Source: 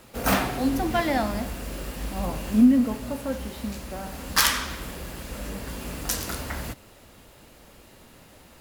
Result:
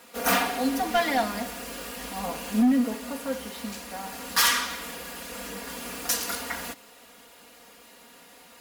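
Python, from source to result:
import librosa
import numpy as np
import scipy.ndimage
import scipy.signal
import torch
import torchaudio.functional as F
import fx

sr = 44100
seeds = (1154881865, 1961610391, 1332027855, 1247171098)

y = fx.highpass(x, sr, hz=580.0, slope=6)
y = y + 0.97 * np.pad(y, (int(4.2 * sr / 1000.0), 0))[:len(y)]
y = np.clip(y, -10.0 ** (-16.5 / 20.0), 10.0 ** (-16.5 / 20.0))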